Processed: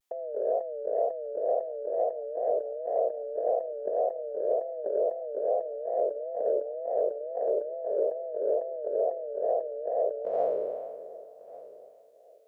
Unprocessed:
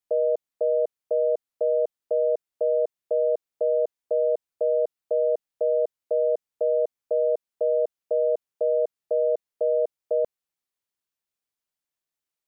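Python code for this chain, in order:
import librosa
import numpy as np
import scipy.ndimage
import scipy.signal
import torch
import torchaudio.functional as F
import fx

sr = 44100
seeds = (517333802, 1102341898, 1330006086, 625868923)

y = fx.spec_trails(x, sr, decay_s=1.95)
y = fx.highpass(y, sr, hz=360.0, slope=6)
y = fx.over_compress(y, sr, threshold_db=-29.0, ratio=-0.5)
y = fx.wow_flutter(y, sr, seeds[0], rate_hz=2.1, depth_cents=130.0)
y = fx.echo_feedback(y, sr, ms=1143, feedback_pct=31, wet_db=-19)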